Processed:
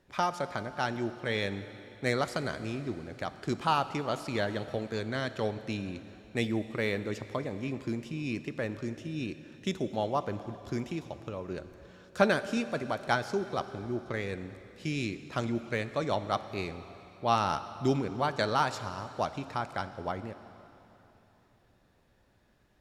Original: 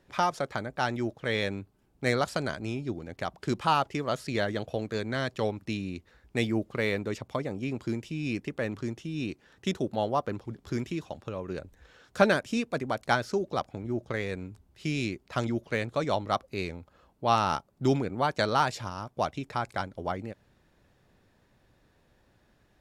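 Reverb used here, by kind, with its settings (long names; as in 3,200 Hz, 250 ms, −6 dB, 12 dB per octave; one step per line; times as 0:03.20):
dense smooth reverb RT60 3.4 s, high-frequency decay 1×, DRR 11.5 dB
level −2.5 dB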